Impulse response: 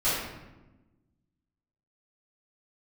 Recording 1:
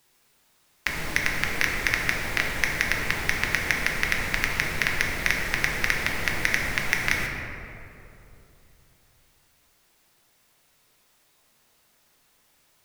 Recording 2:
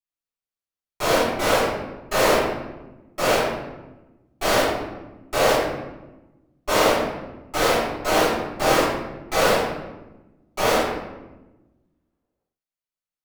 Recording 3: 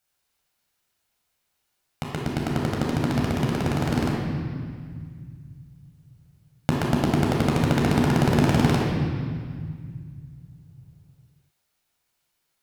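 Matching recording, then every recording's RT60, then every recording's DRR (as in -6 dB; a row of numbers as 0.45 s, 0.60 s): 2; 2.9 s, 1.1 s, 1.9 s; -0.5 dB, -14.5 dB, -3.0 dB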